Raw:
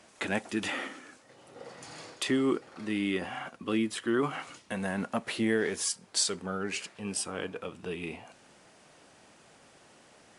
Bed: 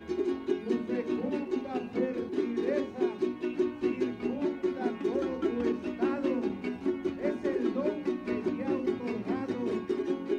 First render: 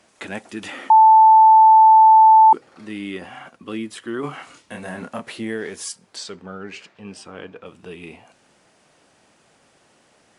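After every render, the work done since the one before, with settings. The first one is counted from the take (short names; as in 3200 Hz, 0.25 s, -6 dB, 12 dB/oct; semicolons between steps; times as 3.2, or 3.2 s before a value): 0.9–2.53 bleep 880 Hz -6.5 dBFS; 4.21–5.28 doubler 28 ms -3 dB; 6.16–7.66 air absorption 110 m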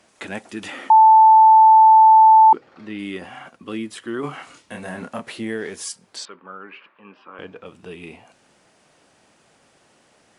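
1.35–2.99 LPF 4300 Hz; 6.25–7.39 speaker cabinet 370–2600 Hz, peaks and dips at 430 Hz -7 dB, 710 Hz -9 dB, 1100 Hz +7 dB, 2000 Hz -5 dB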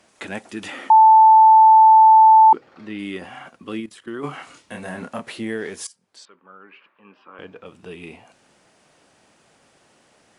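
3.8–4.24 level quantiser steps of 15 dB; 5.87–7.98 fade in, from -18.5 dB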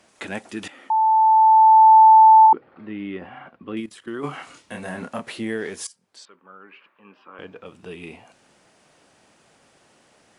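0.68–1.96 fade in linear, from -14 dB; 2.46–3.77 air absorption 430 m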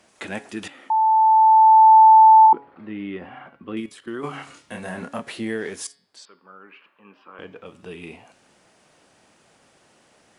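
de-hum 140.1 Hz, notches 37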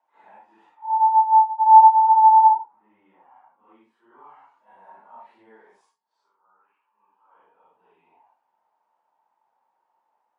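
phase scrambler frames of 0.2 s; band-pass 910 Hz, Q 11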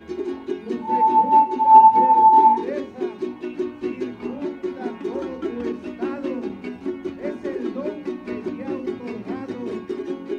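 add bed +2.5 dB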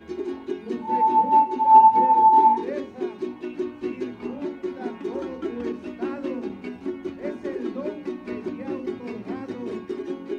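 gain -2.5 dB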